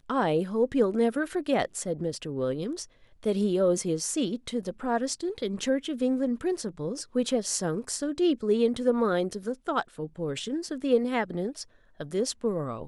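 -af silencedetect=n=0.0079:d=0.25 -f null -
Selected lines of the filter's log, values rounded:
silence_start: 2.85
silence_end: 3.23 | silence_duration: 0.38
silence_start: 11.63
silence_end: 12.00 | silence_duration: 0.37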